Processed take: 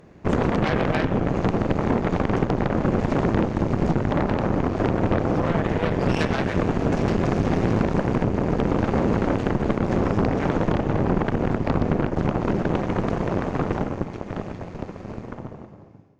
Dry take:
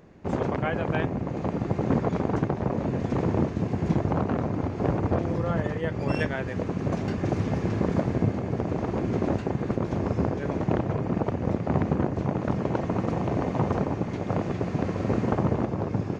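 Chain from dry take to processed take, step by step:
fade-out on the ending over 5.23 s
dynamic equaliser 220 Hz, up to +4 dB, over −34 dBFS, Q 0.89
downward compressor 6 to 1, threshold −23 dBFS, peak gain reduction 8.5 dB
four-comb reverb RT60 1.5 s, combs from 30 ms, DRR 8 dB
harmonic generator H 8 −12 dB, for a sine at −11.5 dBFS
level +3 dB

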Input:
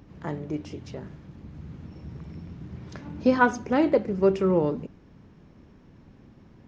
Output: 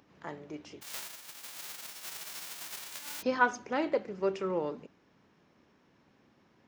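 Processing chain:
0:00.81–0:03.21: spectral envelope flattened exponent 0.1
high-pass filter 790 Hz 6 dB per octave
level −3 dB

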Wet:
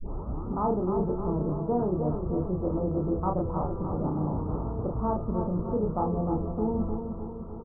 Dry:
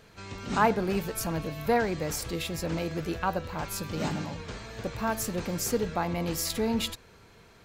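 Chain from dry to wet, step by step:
turntable start at the beginning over 0.47 s
Chebyshev low-pass with heavy ripple 1,300 Hz, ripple 3 dB
spectral tilt −4 dB per octave
double-tracking delay 33 ms −4.5 dB
reversed playback
downward compressor, threshold −28 dBFS, peak gain reduction 13.5 dB
reversed playback
low-shelf EQ 270 Hz −9.5 dB
on a send: repeating echo 305 ms, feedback 57%, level −7 dB
on the sum: level +7.5 dB

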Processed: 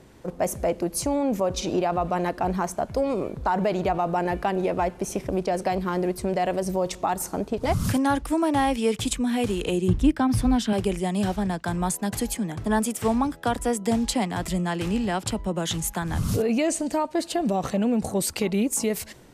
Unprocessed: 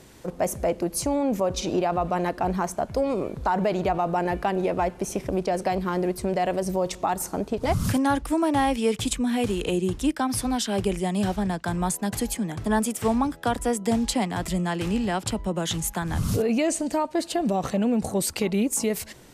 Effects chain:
0:09.88–0:10.73: bass and treble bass +11 dB, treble −7 dB
one half of a high-frequency compander decoder only

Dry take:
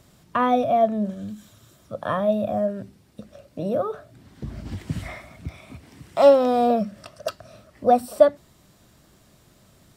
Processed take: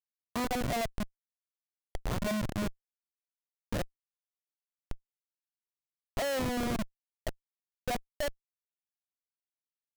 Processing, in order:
high-shelf EQ 7,100 Hz −4 dB
mains-hum notches 50/100/150/200/250/300/350/400 Hz
0:01.16–0:02.17: frequency shifter +22 Hz
comparator with hysteresis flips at −19.5 dBFS
level −6.5 dB

